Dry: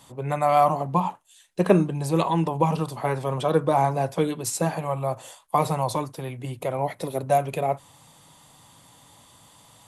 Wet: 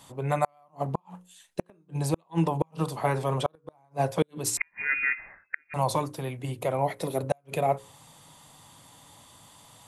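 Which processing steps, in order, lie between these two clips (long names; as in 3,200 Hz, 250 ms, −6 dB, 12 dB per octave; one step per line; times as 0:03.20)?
mains-hum notches 60/120/180/240/300/360/420/480/540 Hz
gate with flip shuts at −12 dBFS, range −41 dB
0:04.57–0:05.74: voice inversion scrambler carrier 2,600 Hz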